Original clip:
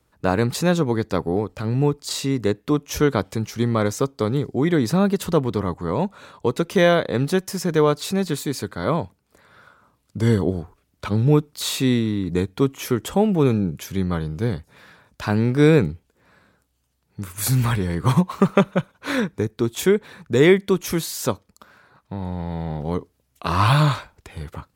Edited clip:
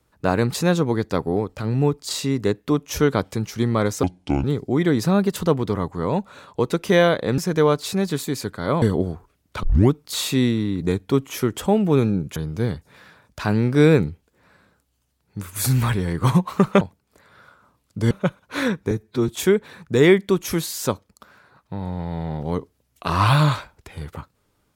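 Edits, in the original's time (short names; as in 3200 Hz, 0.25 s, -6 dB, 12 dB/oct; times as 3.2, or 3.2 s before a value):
4.03–4.3 speed 66%
7.24–7.56 cut
9–10.3 move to 18.63
11.11 tape start 0.28 s
13.84–14.18 cut
19.43–19.68 stretch 1.5×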